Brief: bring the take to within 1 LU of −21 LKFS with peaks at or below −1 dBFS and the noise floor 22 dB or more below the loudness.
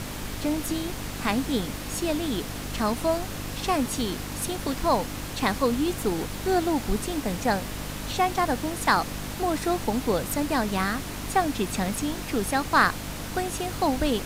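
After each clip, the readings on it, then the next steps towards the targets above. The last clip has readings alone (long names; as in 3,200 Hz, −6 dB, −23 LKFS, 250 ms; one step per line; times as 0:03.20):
mains hum 50 Hz; hum harmonics up to 300 Hz; level of the hum −35 dBFS; background noise floor −35 dBFS; target noise floor −49 dBFS; integrated loudness −27.0 LKFS; sample peak −8.5 dBFS; target loudness −21.0 LKFS
→ hum removal 50 Hz, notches 6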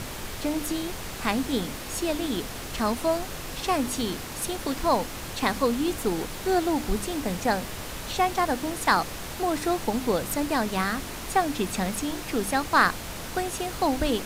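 mains hum none found; background noise floor −37 dBFS; target noise floor −50 dBFS
→ noise reduction from a noise print 13 dB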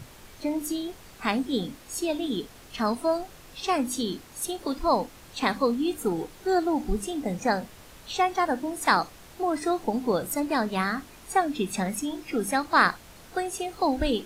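background noise floor −49 dBFS; target noise floor −50 dBFS
→ noise reduction from a noise print 6 dB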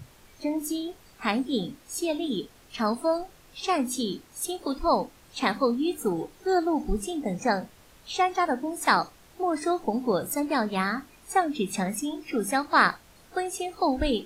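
background noise floor −55 dBFS; integrated loudness −27.5 LKFS; sample peak −8.5 dBFS; target loudness −21.0 LKFS
→ level +6.5 dB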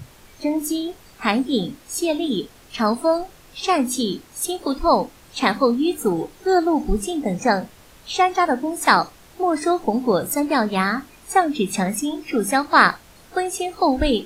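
integrated loudness −21.0 LKFS; sample peak −2.0 dBFS; background noise floor −49 dBFS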